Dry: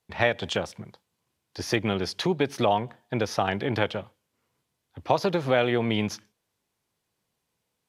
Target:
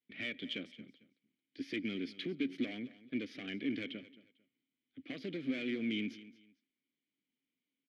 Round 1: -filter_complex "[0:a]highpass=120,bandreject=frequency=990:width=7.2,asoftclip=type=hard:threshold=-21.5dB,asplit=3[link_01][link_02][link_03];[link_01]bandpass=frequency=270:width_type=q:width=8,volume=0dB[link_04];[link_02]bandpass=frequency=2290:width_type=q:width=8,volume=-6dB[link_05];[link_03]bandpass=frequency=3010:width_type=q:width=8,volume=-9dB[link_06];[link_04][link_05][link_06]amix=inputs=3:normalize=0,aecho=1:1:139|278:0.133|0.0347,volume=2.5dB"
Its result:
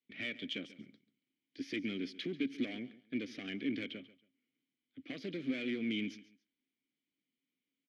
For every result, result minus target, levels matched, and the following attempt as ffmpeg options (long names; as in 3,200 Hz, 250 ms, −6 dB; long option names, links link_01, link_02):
echo 85 ms early; 8,000 Hz band +4.0 dB
-filter_complex "[0:a]highpass=120,bandreject=frequency=990:width=7.2,asoftclip=type=hard:threshold=-21.5dB,asplit=3[link_01][link_02][link_03];[link_01]bandpass=frequency=270:width_type=q:width=8,volume=0dB[link_04];[link_02]bandpass=frequency=2290:width_type=q:width=8,volume=-6dB[link_05];[link_03]bandpass=frequency=3010:width_type=q:width=8,volume=-9dB[link_06];[link_04][link_05][link_06]amix=inputs=3:normalize=0,aecho=1:1:224|448:0.133|0.0347,volume=2.5dB"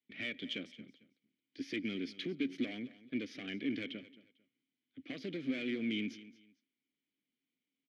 8,000 Hz band +4.0 dB
-filter_complex "[0:a]highpass=120,equalizer=frequency=6100:width_type=o:width=0.51:gain=-6,bandreject=frequency=990:width=7.2,asoftclip=type=hard:threshold=-21.5dB,asplit=3[link_01][link_02][link_03];[link_01]bandpass=frequency=270:width_type=q:width=8,volume=0dB[link_04];[link_02]bandpass=frequency=2290:width_type=q:width=8,volume=-6dB[link_05];[link_03]bandpass=frequency=3010:width_type=q:width=8,volume=-9dB[link_06];[link_04][link_05][link_06]amix=inputs=3:normalize=0,aecho=1:1:224|448:0.133|0.0347,volume=2.5dB"